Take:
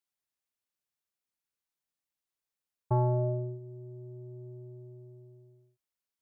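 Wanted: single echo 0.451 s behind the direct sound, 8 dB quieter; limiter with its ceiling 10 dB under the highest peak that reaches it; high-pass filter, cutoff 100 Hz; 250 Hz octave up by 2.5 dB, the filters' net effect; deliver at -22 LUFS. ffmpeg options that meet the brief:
-af "highpass=100,equalizer=f=250:t=o:g=7.5,alimiter=level_in=1.5dB:limit=-24dB:level=0:latency=1,volume=-1.5dB,aecho=1:1:451:0.398,volume=16.5dB"

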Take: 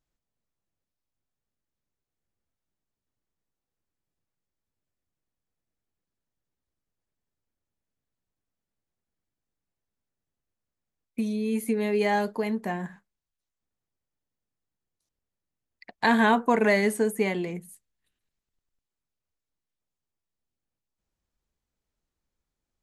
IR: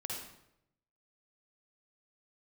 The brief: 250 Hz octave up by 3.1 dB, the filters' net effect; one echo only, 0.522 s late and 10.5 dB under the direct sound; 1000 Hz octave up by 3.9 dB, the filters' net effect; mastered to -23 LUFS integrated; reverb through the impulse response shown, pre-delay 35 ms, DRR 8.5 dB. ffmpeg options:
-filter_complex "[0:a]equalizer=f=250:t=o:g=3.5,equalizer=f=1k:t=o:g=4.5,aecho=1:1:522:0.299,asplit=2[a][b];[1:a]atrim=start_sample=2205,adelay=35[c];[b][c]afir=irnorm=-1:irlink=0,volume=-9dB[d];[a][d]amix=inputs=2:normalize=0,volume=-1dB"

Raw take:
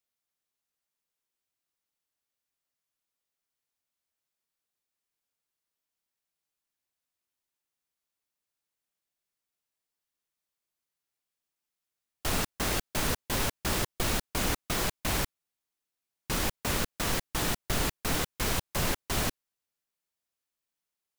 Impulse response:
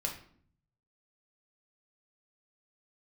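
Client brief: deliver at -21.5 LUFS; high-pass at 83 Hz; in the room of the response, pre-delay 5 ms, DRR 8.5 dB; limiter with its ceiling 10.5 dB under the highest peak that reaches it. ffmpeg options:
-filter_complex "[0:a]highpass=83,alimiter=level_in=3.5dB:limit=-24dB:level=0:latency=1,volume=-3.5dB,asplit=2[a][b];[1:a]atrim=start_sample=2205,adelay=5[c];[b][c]afir=irnorm=-1:irlink=0,volume=-11dB[d];[a][d]amix=inputs=2:normalize=0,volume=16dB"

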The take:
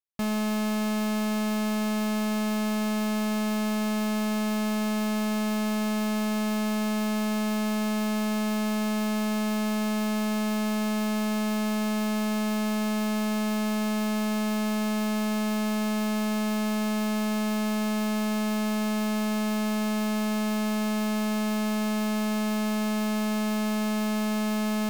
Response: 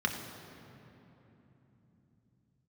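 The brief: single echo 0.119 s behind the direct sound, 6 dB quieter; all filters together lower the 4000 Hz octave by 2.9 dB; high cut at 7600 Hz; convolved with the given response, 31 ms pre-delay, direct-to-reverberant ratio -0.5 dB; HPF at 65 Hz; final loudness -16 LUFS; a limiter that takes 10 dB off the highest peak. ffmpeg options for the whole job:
-filter_complex "[0:a]highpass=65,lowpass=7.6k,equalizer=f=4k:t=o:g=-3.5,alimiter=level_in=7.5dB:limit=-24dB:level=0:latency=1,volume=-7.5dB,aecho=1:1:119:0.501,asplit=2[a][b];[1:a]atrim=start_sample=2205,adelay=31[c];[b][c]afir=irnorm=-1:irlink=0,volume=-7.5dB[d];[a][d]amix=inputs=2:normalize=0,volume=19.5dB"

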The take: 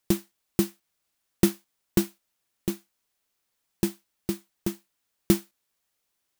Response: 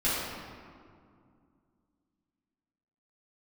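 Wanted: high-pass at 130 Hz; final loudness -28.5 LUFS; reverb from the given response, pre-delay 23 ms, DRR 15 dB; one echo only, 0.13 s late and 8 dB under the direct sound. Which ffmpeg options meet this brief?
-filter_complex "[0:a]highpass=130,aecho=1:1:130:0.398,asplit=2[a][b];[1:a]atrim=start_sample=2205,adelay=23[c];[b][c]afir=irnorm=-1:irlink=0,volume=-26.5dB[d];[a][d]amix=inputs=2:normalize=0,volume=1dB"

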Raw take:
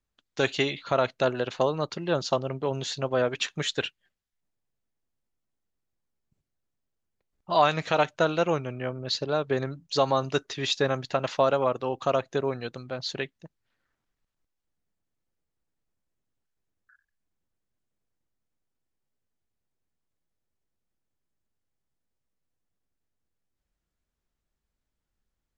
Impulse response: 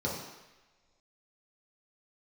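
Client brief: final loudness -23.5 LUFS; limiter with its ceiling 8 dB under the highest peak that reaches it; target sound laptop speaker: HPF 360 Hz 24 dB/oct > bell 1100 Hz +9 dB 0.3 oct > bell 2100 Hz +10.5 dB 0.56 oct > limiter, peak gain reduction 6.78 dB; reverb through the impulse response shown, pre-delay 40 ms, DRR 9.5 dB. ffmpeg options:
-filter_complex "[0:a]alimiter=limit=-16.5dB:level=0:latency=1,asplit=2[a][b];[1:a]atrim=start_sample=2205,adelay=40[c];[b][c]afir=irnorm=-1:irlink=0,volume=-16.5dB[d];[a][d]amix=inputs=2:normalize=0,highpass=f=360:w=0.5412,highpass=f=360:w=1.3066,equalizer=f=1.1k:t=o:w=0.3:g=9,equalizer=f=2.1k:t=o:w=0.56:g=10.5,volume=6.5dB,alimiter=limit=-12dB:level=0:latency=1"

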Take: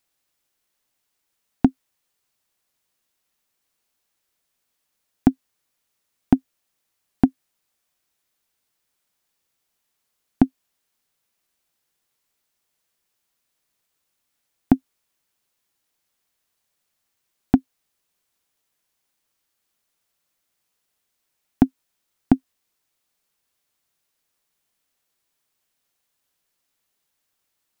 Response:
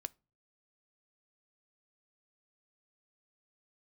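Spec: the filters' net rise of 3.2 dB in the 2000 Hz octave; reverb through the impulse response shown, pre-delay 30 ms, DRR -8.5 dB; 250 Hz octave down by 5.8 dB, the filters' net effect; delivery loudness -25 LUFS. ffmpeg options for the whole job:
-filter_complex "[0:a]equalizer=f=250:t=o:g=-6.5,equalizer=f=2k:t=o:g=4.5,asplit=2[a][b];[1:a]atrim=start_sample=2205,adelay=30[c];[b][c]afir=irnorm=-1:irlink=0,volume=11.5dB[d];[a][d]amix=inputs=2:normalize=0,volume=-6dB"

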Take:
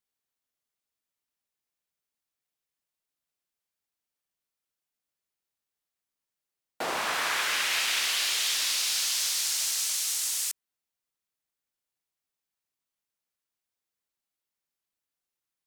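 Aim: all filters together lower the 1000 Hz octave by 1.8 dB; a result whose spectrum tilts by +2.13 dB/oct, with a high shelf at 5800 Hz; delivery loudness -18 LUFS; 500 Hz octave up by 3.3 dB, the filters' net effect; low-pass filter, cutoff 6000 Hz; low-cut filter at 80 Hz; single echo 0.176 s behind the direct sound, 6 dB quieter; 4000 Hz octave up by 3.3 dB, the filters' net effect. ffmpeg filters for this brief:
-af "highpass=80,lowpass=6k,equalizer=f=500:t=o:g=5.5,equalizer=f=1k:t=o:g=-4,equalizer=f=4k:t=o:g=6.5,highshelf=f=5.8k:g=-3.5,aecho=1:1:176:0.501,volume=6.5dB"

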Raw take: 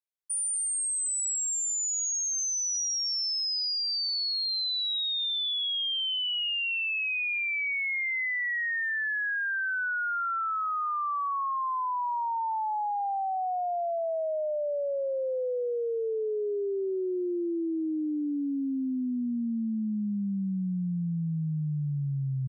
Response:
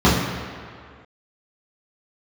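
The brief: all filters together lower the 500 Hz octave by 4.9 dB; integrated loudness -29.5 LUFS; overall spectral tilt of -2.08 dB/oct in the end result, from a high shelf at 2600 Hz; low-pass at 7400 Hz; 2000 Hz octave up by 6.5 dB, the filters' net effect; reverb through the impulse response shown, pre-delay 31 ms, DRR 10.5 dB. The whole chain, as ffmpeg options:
-filter_complex "[0:a]lowpass=7.4k,equalizer=f=500:t=o:g=-7,equalizer=f=2k:t=o:g=6,highshelf=f=2.6k:g=5.5,asplit=2[a][b];[1:a]atrim=start_sample=2205,adelay=31[c];[b][c]afir=irnorm=-1:irlink=0,volume=-35dB[d];[a][d]amix=inputs=2:normalize=0,volume=-5.5dB"

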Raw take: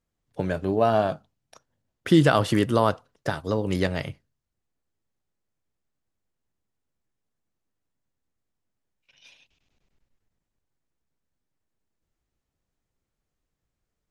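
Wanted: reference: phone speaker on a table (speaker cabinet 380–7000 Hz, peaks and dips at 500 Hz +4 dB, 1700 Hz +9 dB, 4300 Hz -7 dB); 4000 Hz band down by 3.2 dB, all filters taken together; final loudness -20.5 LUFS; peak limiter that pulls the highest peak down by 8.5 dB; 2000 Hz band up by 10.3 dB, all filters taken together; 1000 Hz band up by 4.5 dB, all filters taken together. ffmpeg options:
-af "equalizer=f=1k:t=o:g=4,equalizer=f=2k:t=o:g=5.5,equalizer=f=4k:t=o:g=-6,alimiter=limit=-10.5dB:level=0:latency=1,highpass=f=380:w=0.5412,highpass=f=380:w=1.3066,equalizer=f=500:t=q:w=4:g=4,equalizer=f=1.7k:t=q:w=4:g=9,equalizer=f=4.3k:t=q:w=4:g=-7,lowpass=f=7k:w=0.5412,lowpass=f=7k:w=1.3066,volume=5dB"

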